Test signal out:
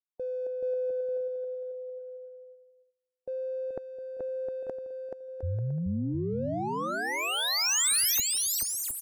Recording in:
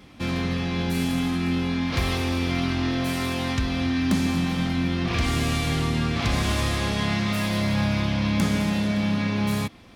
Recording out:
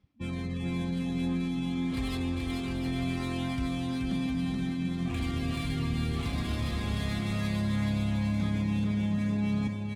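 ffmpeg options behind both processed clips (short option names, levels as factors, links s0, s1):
-filter_complex "[0:a]afftdn=nr=27:nf=-31,adynamicsmooth=sensitivity=7:basefreq=3500,highshelf=f=5300:g=7,areverse,acompressor=threshold=0.0158:ratio=6,areverse,bass=f=250:g=4,treble=f=4000:g=8,asplit=2[s0][s1];[s1]aecho=0:1:430|709.5|891.2|1009|1086:0.631|0.398|0.251|0.158|0.1[s2];[s0][s2]amix=inputs=2:normalize=0,volume=1.19"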